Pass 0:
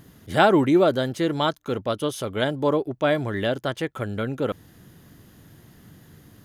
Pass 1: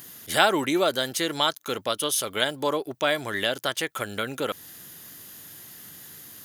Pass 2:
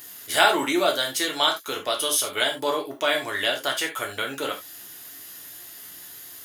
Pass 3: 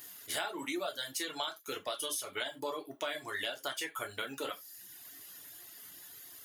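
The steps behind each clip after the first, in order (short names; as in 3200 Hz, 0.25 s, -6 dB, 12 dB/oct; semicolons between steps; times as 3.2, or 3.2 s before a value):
tilt +4 dB/oct; in parallel at +2 dB: compressor, threshold -29 dBFS, peak gain reduction 16.5 dB; on the sum: gain -4 dB
bell 120 Hz -10.5 dB 2.6 oct; non-linear reverb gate 0.11 s falling, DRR 0 dB
reverb removal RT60 0.84 s; compressor 10:1, threshold -26 dBFS, peak gain reduction 13.5 dB; gain -7 dB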